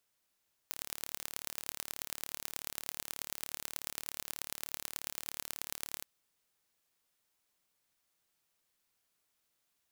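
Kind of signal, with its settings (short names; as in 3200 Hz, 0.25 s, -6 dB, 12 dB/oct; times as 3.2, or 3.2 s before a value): pulse train 36.7/s, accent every 4, -9 dBFS 5.32 s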